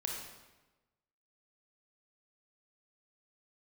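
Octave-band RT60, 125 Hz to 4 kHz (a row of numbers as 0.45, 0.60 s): 1.3, 1.2, 1.2, 1.1, 1.0, 0.90 s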